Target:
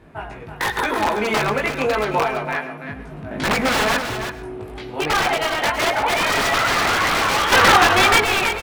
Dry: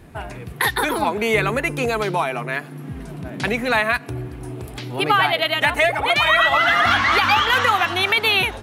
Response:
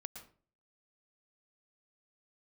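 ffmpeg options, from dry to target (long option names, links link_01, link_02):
-filter_complex "[0:a]asplit=2[link_01][link_02];[link_02]adelay=19,volume=-2dB[link_03];[link_01][link_03]amix=inputs=2:normalize=0,asettb=1/sr,asplit=3[link_04][link_05][link_06];[link_04]atrim=end=3.314[link_07];[link_05]atrim=start=3.31:end=3.97,asetpts=PTS-STARTPTS,afade=type=in:duration=0.004:curve=qsin,afade=type=out:start_time=0.656:duration=0.004:curve=qsin,acontrast=38[link_08];[link_06]atrim=start=3.966[link_09];[link_07][link_08]acrossfade=duration=0.004:curve1=hsin:curve2=qsin[link_10];[link_10][link_09]acrossfade=duration=0.004:curve1=qsin:curve2=hsin,aeval=exprs='1.06*(cos(1*acos(clip(val(0)/1.06,-1,1)))-cos(1*PI/2))+0.0133*(cos(5*acos(clip(val(0)/1.06,-1,1)))-cos(5*PI/2))+0.0075*(cos(6*acos(clip(val(0)/1.06,-1,1)))-cos(6*PI/2))+0.075*(cos(7*acos(clip(val(0)/1.06,-1,1)))-cos(7*PI/2))':channel_layout=same,aeval=exprs='(mod(3.55*val(0)+1,2)-1)/3.55':channel_layout=same,asplit=2[link_11][link_12];[link_12]highpass=frequency=720:poles=1,volume=6dB,asoftclip=type=tanh:threshold=-11dB[link_13];[link_11][link_13]amix=inputs=2:normalize=0,lowpass=frequency=1300:poles=1,volume=-6dB,asettb=1/sr,asplit=3[link_14][link_15][link_16];[link_14]atrim=end=7.524[link_17];[link_15]atrim=start=7.52:end=8.24,asetpts=PTS-STARTPTS,afade=type=in:duration=0.004:curve=qsin,afade=type=out:start_time=0.716:duration=0.004:curve=qsin,acontrast=88[link_18];[link_16]atrim=start=8.236[link_19];[link_17][link_18]acrossfade=duration=0.004:curve1=hsin:curve2=qsin[link_20];[link_20][link_19]acrossfade=duration=0.004:curve1=qsin:curve2=hsin,aecho=1:1:329:0.376,asplit=2[link_21][link_22];[1:a]atrim=start_sample=2205,asetrate=48510,aresample=44100[link_23];[link_22][link_23]afir=irnorm=-1:irlink=0,volume=3.5dB[link_24];[link_21][link_24]amix=inputs=2:normalize=0,volume=-1dB"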